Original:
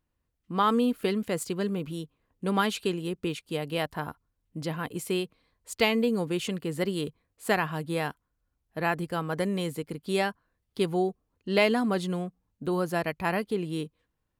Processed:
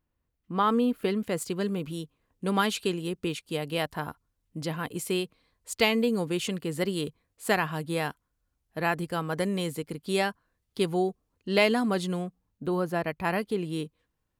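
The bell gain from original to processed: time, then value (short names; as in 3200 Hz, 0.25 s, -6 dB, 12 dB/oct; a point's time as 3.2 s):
bell 7800 Hz 2.4 oct
0.95 s -5.5 dB
1.71 s +3 dB
12.2 s +3 dB
12.99 s -8 dB
13.36 s +1 dB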